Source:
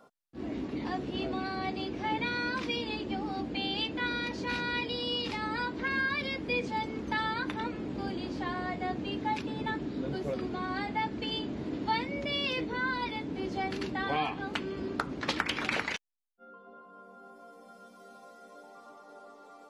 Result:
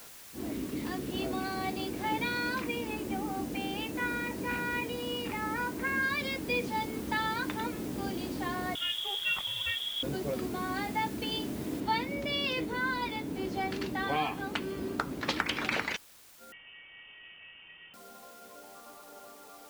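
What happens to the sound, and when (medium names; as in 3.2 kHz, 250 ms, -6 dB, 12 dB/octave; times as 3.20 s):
0.52–1.11 s: peaking EQ 800 Hz -8.5 dB 0.56 oct
2.61–6.03 s: high-order bell 5.5 kHz -14 dB
8.75–10.03 s: frequency inversion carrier 3.6 kHz
11.80 s: noise floor step -50 dB -56 dB
16.52–17.94 s: frequency inversion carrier 3.3 kHz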